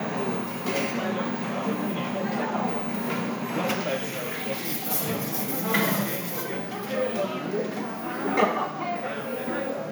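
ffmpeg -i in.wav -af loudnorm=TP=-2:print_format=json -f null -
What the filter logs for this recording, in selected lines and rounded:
"input_i" : "-27.6",
"input_tp" : "-8.7",
"input_lra" : "1.9",
"input_thresh" : "-37.6",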